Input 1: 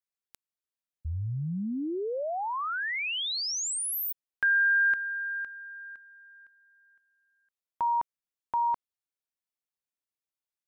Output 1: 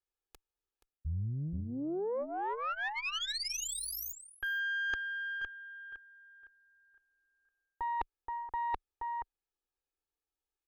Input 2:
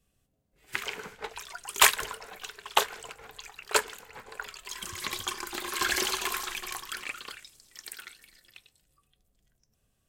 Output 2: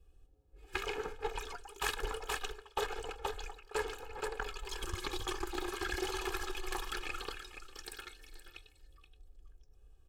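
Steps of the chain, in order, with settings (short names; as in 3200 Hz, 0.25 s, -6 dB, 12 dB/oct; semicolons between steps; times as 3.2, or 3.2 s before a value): Butterworth band-stop 2000 Hz, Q 7.3; tilt -3 dB/oct; in parallel at -7 dB: soft clip -14.5 dBFS; on the sum: bell 120 Hz -12 dB 0.99 oct; comb 2.4 ms, depth 84%; echo 0.476 s -12.5 dB; reverse; compressor 12:1, threshold -30 dBFS; reverse; added harmonics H 3 -19 dB, 6 -24 dB, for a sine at -16.5 dBFS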